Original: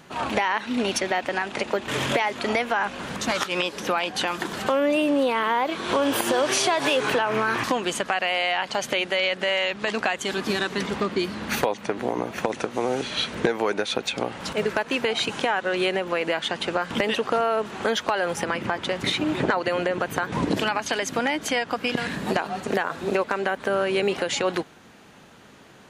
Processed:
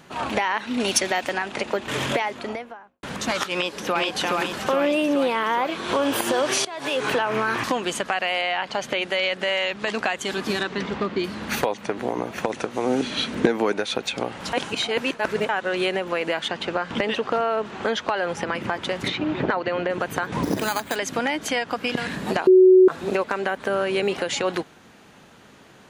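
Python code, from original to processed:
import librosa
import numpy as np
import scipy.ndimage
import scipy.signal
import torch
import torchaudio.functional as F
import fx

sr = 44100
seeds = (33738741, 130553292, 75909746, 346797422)

y = fx.high_shelf(x, sr, hz=4600.0, db=11.0, at=(0.8, 1.33))
y = fx.studio_fade_out(y, sr, start_s=2.04, length_s=0.99)
y = fx.echo_throw(y, sr, start_s=3.53, length_s=0.48, ms=420, feedback_pct=65, wet_db=-2.0)
y = fx.high_shelf(y, sr, hz=7100.0, db=-11.0, at=(8.41, 9.02))
y = fx.air_absorb(y, sr, metres=100.0, at=(10.63, 11.24))
y = fx.peak_eq(y, sr, hz=260.0, db=9.0, octaves=0.77, at=(12.86, 13.72))
y = fx.air_absorb(y, sr, metres=66.0, at=(16.48, 18.55))
y = fx.air_absorb(y, sr, metres=150.0, at=(19.08, 19.9))
y = fx.resample_bad(y, sr, factor=8, down='filtered', up='hold', at=(20.43, 20.96))
y = fx.edit(y, sr, fx.fade_in_from(start_s=6.65, length_s=0.42, floor_db=-21.5),
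    fx.reverse_span(start_s=14.53, length_s=0.96),
    fx.bleep(start_s=22.47, length_s=0.41, hz=372.0, db=-8.5), tone=tone)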